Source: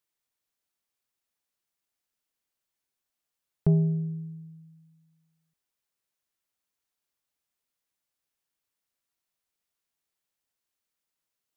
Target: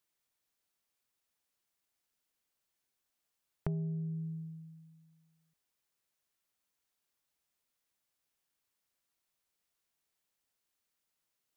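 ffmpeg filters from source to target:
ffmpeg -i in.wav -af "acompressor=threshold=-37dB:ratio=4,volume=1dB" out.wav

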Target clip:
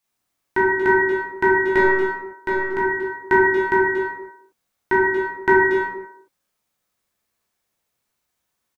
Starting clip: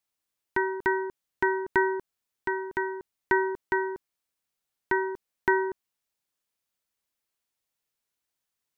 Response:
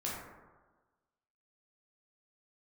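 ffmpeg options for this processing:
-filter_complex "[0:a]asettb=1/sr,asplit=3[link_01][link_02][link_03];[link_01]atrim=end=1.664[link_04];[link_02]atrim=start=1.66:end=2.71,asetpts=PTS-STARTPTS,afade=type=in:duration=0.004:curve=qsin,afade=type=out:start_time=1.046:duration=0.004:curve=qsin,aeval=exprs='if(lt(val(0),0),0.708*val(0),val(0))':channel_layout=same[link_05];[link_03]atrim=start=2.706[link_06];[link_04][link_05]acrossfade=duration=0.004:curve1=hsin:curve2=qsin[link_07];[link_07][link_06]acrossfade=duration=0.004:curve1=qsin:curve2=hsin,asplit=2[link_08][link_09];[link_09]adelay=230,highpass=300,lowpass=3400,asoftclip=type=hard:threshold=-21dB,volume=-14dB[link_10];[link_08][link_10]amix=inputs=2:normalize=0[link_11];[1:a]atrim=start_sample=2205,afade=type=out:start_time=0.38:duration=0.01,atrim=end_sample=17199[link_12];[link_11][link_12]afir=irnorm=-1:irlink=0,volume=7.5dB"

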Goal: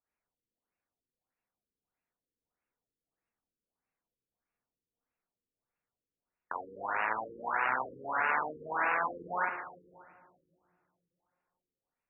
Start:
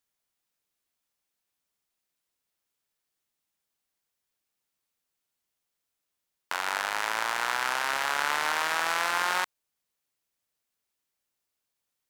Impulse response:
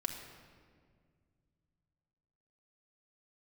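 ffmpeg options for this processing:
-filter_complex "[0:a]asplit=2[link_01][link_02];[link_02]highshelf=frequency=6200:width_type=q:width=3:gain=13[link_03];[1:a]atrim=start_sample=2205,lowpass=3200,adelay=46[link_04];[link_03][link_04]afir=irnorm=-1:irlink=0,volume=-0.5dB[link_05];[link_01][link_05]amix=inputs=2:normalize=0,afftfilt=real='re*lt(b*sr/1024,500*pow(2900/500,0.5+0.5*sin(2*PI*1.6*pts/sr)))':imag='im*lt(b*sr/1024,500*pow(2900/500,0.5+0.5*sin(2*PI*1.6*pts/sr)))':win_size=1024:overlap=0.75,volume=-3.5dB"

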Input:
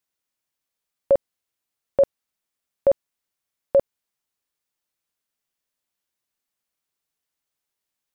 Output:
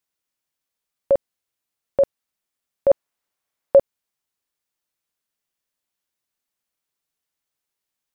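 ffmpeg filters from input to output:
ffmpeg -i in.wav -filter_complex "[0:a]asettb=1/sr,asplit=3[link_01][link_02][link_03];[link_01]atrim=end=2.904[link_04];[link_02]atrim=start=2.9:end=3.79,asetpts=PTS-STARTPTS,afade=type=in:duration=0.004:curve=qsin,afade=type=out:start_time=0.886:duration=0.004:curve=qsin,equalizer=frequency=840:width_type=o:width=2.8:gain=6[link_05];[link_03]atrim=start=3.786[link_06];[link_04][link_05]acrossfade=duration=0.004:curve1=hsin:curve2=qsin[link_07];[link_07][link_06]acrossfade=duration=0.004:curve1=qsin:curve2=hsin" out.wav

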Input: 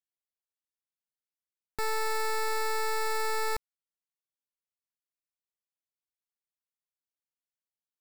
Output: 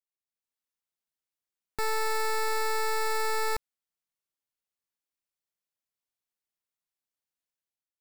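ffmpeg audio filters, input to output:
ffmpeg -i in.wav -af "dynaudnorm=framelen=110:gausssize=7:maxgain=10dB,volume=-8.5dB" out.wav

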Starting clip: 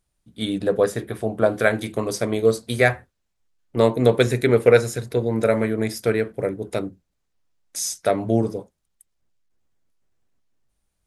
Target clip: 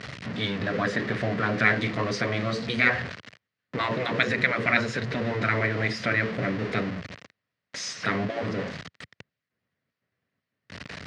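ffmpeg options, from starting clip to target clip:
ffmpeg -i in.wav -af "aeval=exprs='val(0)+0.5*0.0398*sgn(val(0))':channel_layout=same,afftfilt=real='re*lt(hypot(re,im),0.447)':imag='im*lt(hypot(re,im),0.447)':win_size=1024:overlap=0.75,highpass=frequency=100:width=0.5412,highpass=frequency=100:width=1.3066,equalizer=frequency=340:width_type=q:width=4:gain=-8,equalizer=frequency=850:width_type=q:width=4:gain=-8,equalizer=frequency=1900:width_type=q:width=4:gain=7,equalizer=frequency=3500:width_type=q:width=4:gain=-4,lowpass=frequency=4400:width=0.5412,lowpass=frequency=4400:width=1.3066,volume=2dB" out.wav

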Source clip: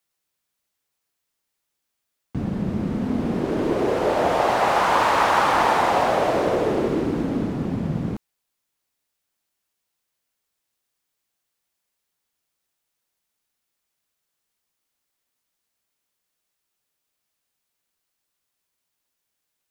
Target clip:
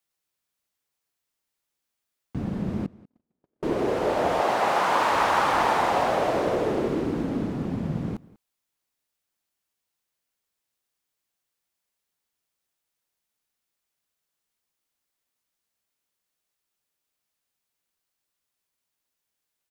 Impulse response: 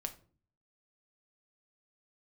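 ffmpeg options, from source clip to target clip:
-filter_complex "[0:a]asettb=1/sr,asplit=3[link_01][link_02][link_03];[link_01]atrim=end=2.864[link_04];[link_02]atrim=start=2.86:end=3.63,asetpts=PTS-STARTPTS,afade=type=in:duration=0.004:curve=qsin,afade=type=out:start_time=0.766:duration=0.004:curve=qsin,agate=range=-58dB:threshold=-16dB:ratio=16:detection=peak[link_05];[link_03]atrim=start=3.626[link_06];[link_04][link_05]acrossfade=duration=0.004:curve1=hsin:curve2=qsin[link_07];[link_07][link_06]acrossfade=duration=0.004:curve1=qsin:curve2=hsin,asettb=1/sr,asplit=3[link_08][link_09][link_10];[link_08]atrim=end=4.404[link_11];[link_09]atrim=start=4.4:end=5.12,asetpts=PTS-STARTPTS,afade=type=in:duration=0.004:curve=qsin,afade=type=out:start_time=0.716:duration=0.004:curve=qsin,highpass=140[link_12];[link_10]atrim=start=5.116[link_13];[link_11][link_12]acrossfade=duration=0.004:curve1=hsin:curve2=qsin[link_14];[link_14][link_13]acrossfade=duration=0.004:curve1=qsin:curve2=hsin,asplit=2[link_15][link_16];[link_16]adelay=192.4,volume=-22dB,highshelf=frequency=4000:gain=-4.33[link_17];[link_15][link_17]amix=inputs=2:normalize=0,volume=-3.5dB"

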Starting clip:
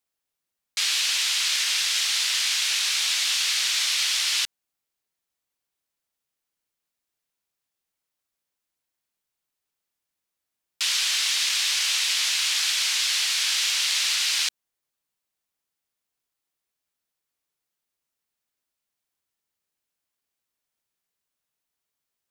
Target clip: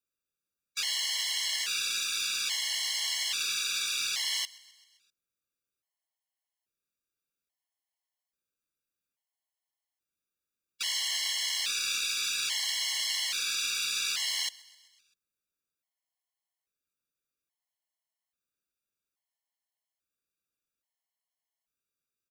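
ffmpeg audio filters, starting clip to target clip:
ffmpeg -i in.wav -filter_complex "[0:a]asplit=6[link_01][link_02][link_03][link_04][link_05][link_06];[link_02]adelay=130,afreqshift=38,volume=-22.5dB[link_07];[link_03]adelay=260,afreqshift=76,volume=-26.8dB[link_08];[link_04]adelay=390,afreqshift=114,volume=-31.1dB[link_09];[link_05]adelay=520,afreqshift=152,volume=-35.4dB[link_10];[link_06]adelay=650,afreqshift=190,volume=-39.7dB[link_11];[link_01][link_07][link_08][link_09][link_10][link_11]amix=inputs=6:normalize=0,acrusher=bits=4:mode=log:mix=0:aa=0.000001,afftfilt=real='re*gt(sin(2*PI*0.6*pts/sr)*(1-2*mod(floor(b*sr/1024/560),2)),0)':imag='im*gt(sin(2*PI*0.6*pts/sr)*(1-2*mod(floor(b*sr/1024/560),2)),0)':win_size=1024:overlap=0.75,volume=-4.5dB" out.wav

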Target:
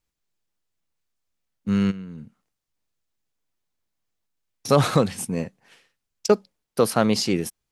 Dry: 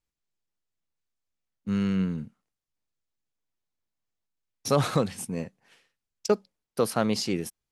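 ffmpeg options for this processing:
ffmpeg -i in.wav -filter_complex "[0:a]asplit=3[link_01][link_02][link_03];[link_01]afade=type=out:start_time=1.9:duration=0.02[link_04];[link_02]acompressor=threshold=-39dB:ratio=10,afade=type=in:start_time=1.9:duration=0.02,afade=type=out:start_time=4.68:duration=0.02[link_05];[link_03]afade=type=in:start_time=4.68:duration=0.02[link_06];[link_04][link_05][link_06]amix=inputs=3:normalize=0,volume=5.5dB" out.wav

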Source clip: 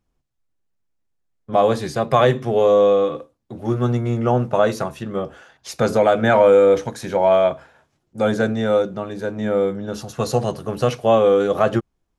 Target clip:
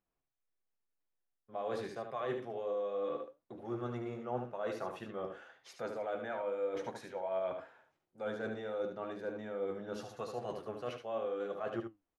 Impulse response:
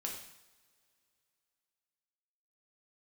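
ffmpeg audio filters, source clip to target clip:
-af "bass=frequency=250:gain=-12,treble=frequency=4000:gain=-11,areverse,acompressor=threshold=-27dB:ratio=6,areverse,flanger=delay=5:depth=6.8:regen=74:speed=0.87:shape=triangular,aecho=1:1:74:0.447,volume=-5dB"

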